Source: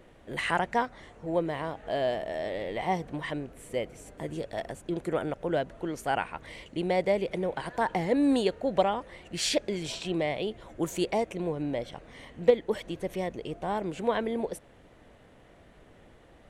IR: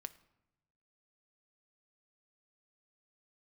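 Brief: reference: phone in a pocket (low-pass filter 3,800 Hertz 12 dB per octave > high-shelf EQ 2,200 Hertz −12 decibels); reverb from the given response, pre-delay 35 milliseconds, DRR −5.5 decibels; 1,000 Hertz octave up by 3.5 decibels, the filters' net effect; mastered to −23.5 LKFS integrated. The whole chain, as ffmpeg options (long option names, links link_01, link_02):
-filter_complex "[0:a]equalizer=frequency=1000:width_type=o:gain=7,asplit=2[link_01][link_02];[1:a]atrim=start_sample=2205,adelay=35[link_03];[link_02][link_03]afir=irnorm=-1:irlink=0,volume=10dB[link_04];[link_01][link_04]amix=inputs=2:normalize=0,lowpass=3800,highshelf=frequency=2200:gain=-12,volume=-0.5dB"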